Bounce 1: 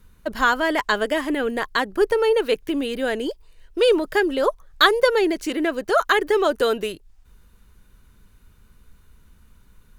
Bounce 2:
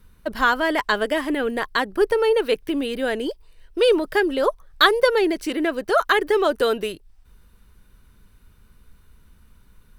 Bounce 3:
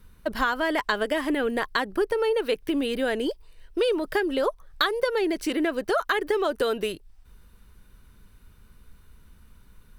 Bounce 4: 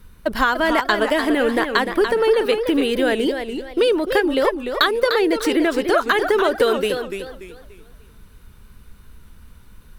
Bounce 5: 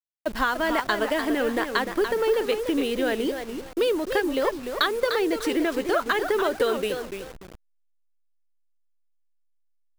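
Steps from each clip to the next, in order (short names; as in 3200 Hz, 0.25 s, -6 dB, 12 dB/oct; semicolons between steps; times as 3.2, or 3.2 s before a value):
notch 6800 Hz, Q 7.1
compressor 5:1, threshold -21 dBFS, peak gain reduction 11 dB
warbling echo 0.294 s, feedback 33%, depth 149 cents, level -7.5 dB; gain +6.5 dB
level-crossing sampler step -30.5 dBFS; gain -6 dB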